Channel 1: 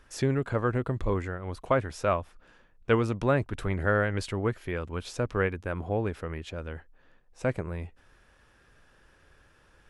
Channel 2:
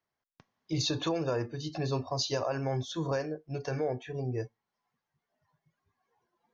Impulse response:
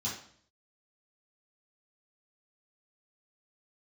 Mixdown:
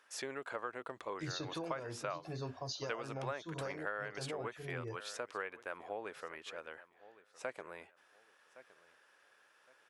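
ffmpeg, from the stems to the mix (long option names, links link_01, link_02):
-filter_complex "[0:a]highpass=620,volume=-4dB,asplit=2[link_01][link_02];[link_02]volume=-21dB[link_03];[1:a]adelay=500,volume=-9dB[link_04];[link_03]aecho=0:1:1114|2228|3342|4456:1|0.27|0.0729|0.0197[link_05];[link_01][link_04][link_05]amix=inputs=3:normalize=0,acompressor=threshold=-37dB:ratio=4"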